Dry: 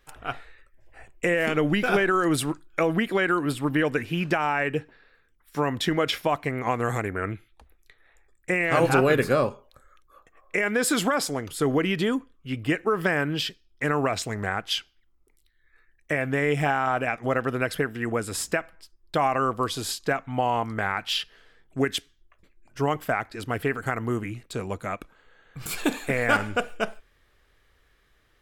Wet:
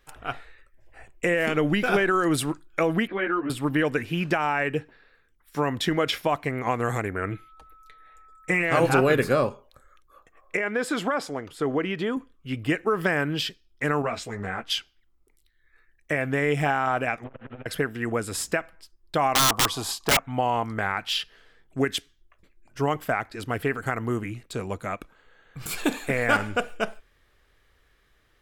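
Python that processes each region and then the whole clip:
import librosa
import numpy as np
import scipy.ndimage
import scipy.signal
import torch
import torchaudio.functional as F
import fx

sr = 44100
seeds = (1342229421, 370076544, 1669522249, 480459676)

y = fx.chain(x, sr, fx.lowpass(hz=3000.0, slope=24),
    fx.ensemble(), at=(3.07, 3.5))
y = fx.comb(y, sr, ms=6.5, depth=0.61, at=(7.3, 8.62), fade=0.02)
y = fx.dmg_tone(y, sr, hz=1300.0, level_db=-51.0, at=(7.3, 8.62), fade=0.02)
y = fx.chain(y, sr, fx.lowpass(hz=2000.0, slope=6),
    fx.low_shelf(hz=200.0, db=-9.0), at=(10.57, 12.17))
y = fx.chain(y, sr, fx.high_shelf(hz=8200.0, db=-10.0),
    fx.doubler(ms=17.0, db=-11.0),
    fx.ensemble(), at=(14.02, 14.7))
y = fx.chain(y, sr, fx.delta_mod(bps=16000, step_db=-42.0),
    fx.low_shelf(hz=220.0, db=-7.0),
    fx.transformer_sat(knee_hz=340.0), at=(17.24, 17.66))
y = fx.chain(y, sr, fx.band_shelf(hz=900.0, db=12.5, octaves=1.0),
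    fx.overflow_wrap(gain_db=14.0), at=(19.35, 20.19))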